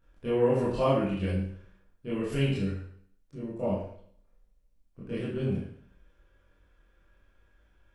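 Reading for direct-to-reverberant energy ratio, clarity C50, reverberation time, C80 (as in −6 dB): −10.0 dB, 1.5 dB, 0.60 s, 5.5 dB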